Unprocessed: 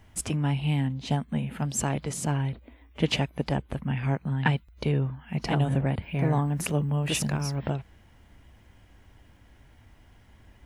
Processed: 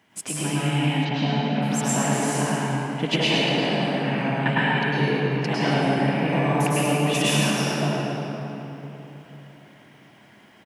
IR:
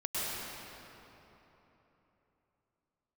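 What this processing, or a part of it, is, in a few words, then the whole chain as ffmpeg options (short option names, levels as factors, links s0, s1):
PA in a hall: -filter_complex "[0:a]highpass=f=160:w=0.5412,highpass=f=160:w=1.3066,equalizer=f=2500:t=o:w=1.9:g=4,aecho=1:1:112:0.447[s0];[1:a]atrim=start_sample=2205[s1];[s0][s1]afir=irnorm=-1:irlink=0,asplit=3[s2][s3][s4];[s2]afade=t=out:st=1.04:d=0.02[s5];[s3]lowpass=f=5500:w=0.5412,lowpass=f=5500:w=1.3066,afade=t=in:st=1.04:d=0.02,afade=t=out:st=1.61:d=0.02[s6];[s4]afade=t=in:st=1.61:d=0.02[s7];[s5][s6][s7]amix=inputs=3:normalize=0"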